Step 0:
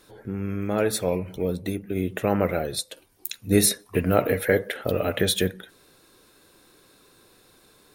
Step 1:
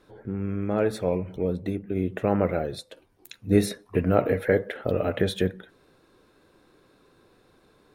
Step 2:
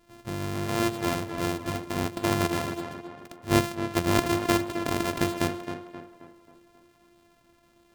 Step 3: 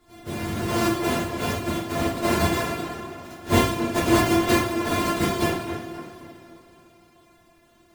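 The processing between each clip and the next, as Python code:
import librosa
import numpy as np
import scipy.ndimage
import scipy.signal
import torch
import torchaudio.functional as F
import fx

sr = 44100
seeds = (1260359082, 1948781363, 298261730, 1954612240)

y1 = fx.lowpass(x, sr, hz=1400.0, slope=6)
y2 = np.r_[np.sort(y1[:len(y1) // 128 * 128].reshape(-1, 128), axis=1).ravel(), y1[len(y1) // 128 * 128:]]
y2 = fx.echo_tape(y2, sr, ms=267, feedback_pct=51, wet_db=-6, lp_hz=2500.0, drive_db=11.0, wow_cents=23)
y2 = F.gain(torch.from_numpy(y2), -2.5).numpy()
y3 = fx.phase_scramble(y2, sr, seeds[0], window_ms=50)
y3 = fx.rev_double_slope(y3, sr, seeds[1], early_s=0.53, late_s=3.4, knee_db=-18, drr_db=-2.5)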